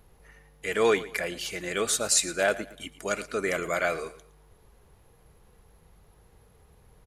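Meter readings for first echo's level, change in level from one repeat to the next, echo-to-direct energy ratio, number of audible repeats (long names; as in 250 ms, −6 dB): −17.0 dB, −9.5 dB, −16.5 dB, 2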